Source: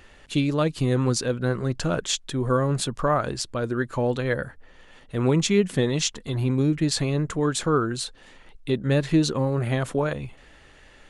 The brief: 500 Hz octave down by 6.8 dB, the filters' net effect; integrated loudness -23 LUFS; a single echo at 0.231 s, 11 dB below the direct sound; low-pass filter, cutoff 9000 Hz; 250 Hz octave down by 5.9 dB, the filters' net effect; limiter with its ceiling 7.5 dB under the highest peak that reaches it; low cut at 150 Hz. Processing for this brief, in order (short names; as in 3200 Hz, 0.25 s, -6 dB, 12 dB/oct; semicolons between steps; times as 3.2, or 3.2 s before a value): HPF 150 Hz; LPF 9000 Hz; bell 250 Hz -4.5 dB; bell 500 Hz -7 dB; limiter -19 dBFS; echo 0.231 s -11 dB; gain +7.5 dB